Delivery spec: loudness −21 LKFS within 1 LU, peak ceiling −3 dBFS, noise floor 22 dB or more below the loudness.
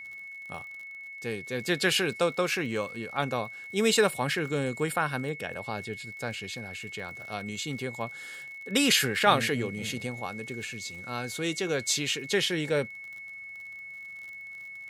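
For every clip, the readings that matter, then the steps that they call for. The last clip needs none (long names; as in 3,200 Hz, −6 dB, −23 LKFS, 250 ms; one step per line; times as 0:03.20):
crackle rate 47 per second; interfering tone 2,200 Hz; level of the tone −40 dBFS; integrated loudness −29.0 LKFS; sample peak −7.0 dBFS; target loudness −21.0 LKFS
→ click removal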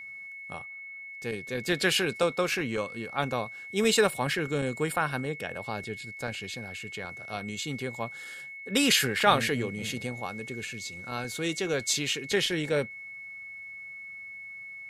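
crackle rate 0 per second; interfering tone 2,200 Hz; level of the tone −40 dBFS
→ notch filter 2,200 Hz, Q 30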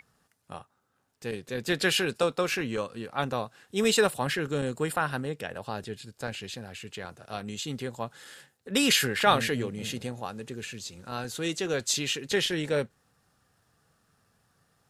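interfering tone none found; integrated loudness −29.0 LKFS; sample peak −7.5 dBFS; target loudness −21.0 LKFS
→ level +8 dB
brickwall limiter −3 dBFS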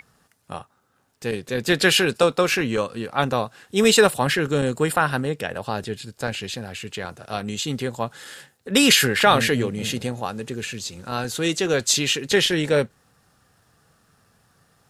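integrated loudness −21.5 LKFS; sample peak −3.0 dBFS; background noise floor −65 dBFS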